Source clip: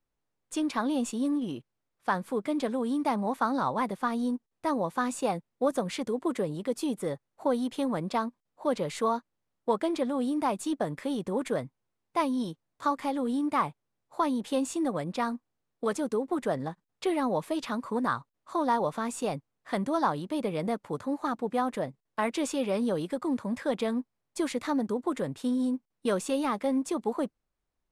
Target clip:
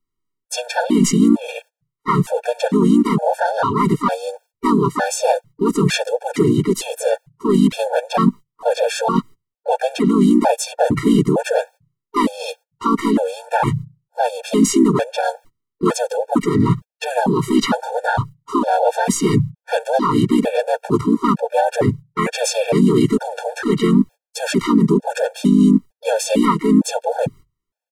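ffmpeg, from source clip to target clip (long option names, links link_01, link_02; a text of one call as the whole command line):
ffmpeg -i in.wav -filter_complex "[0:a]agate=range=-28dB:threshold=-49dB:ratio=16:detection=peak,bandreject=frequency=50:width_type=h:width=6,bandreject=frequency=100:width_type=h:width=6,bandreject=frequency=150:width_type=h:width=6,areverse,acompressor=threshold=-42dB:ratio=6,areverse,asplit=4[link_01][link_02][link_03][link_04];[link_02]asetrate=29433,aresample=44100,atempo=1.49831,volume=-10dB[link_05];[link_03]asetrate=35002,aresample=44100,atempo=1.25992,volume=0dB[link_06];[link_04]asetrate=52444,aresample=44100,atempo=0.840896,volume=-8dB[link_07];[link_01][link_05][link_06][link_07]amix=inputs=4:normalize=0,alimiter=level_in=30.5dB:limit=-1dB:release=50:level=0:latency=1,afftfilt=real='re*gt(sin(2*PI*1.1*pts/sr)*(1-2*mod(floor(b*sr/1024/460),2)),0)':imag='im*gt(sin(2*PI*1.1*pts/sr)*(1-2*mod(floor(b*sr/1024/460),2)),0)':win_size=1024:overlap=0.75,volume=-2.5dB" out.wav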